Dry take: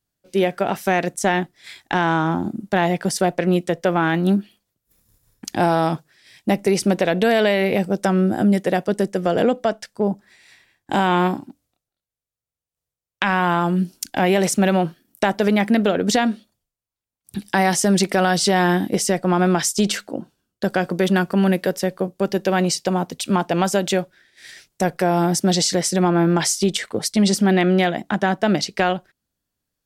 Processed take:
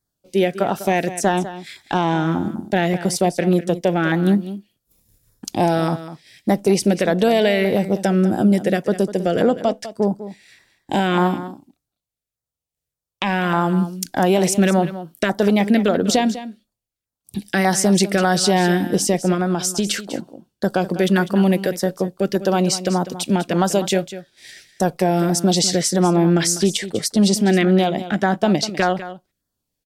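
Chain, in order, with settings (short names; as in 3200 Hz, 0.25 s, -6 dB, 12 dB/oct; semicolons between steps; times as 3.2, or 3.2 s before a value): 19.34–19.87 compressor, threshold -18 dBFS, peak gain reduction 5 dB; LFO notch saw down 1.7 Hz 770–3000 Hz; echo 0.199 s -13.5 dB; gain +1.5 dB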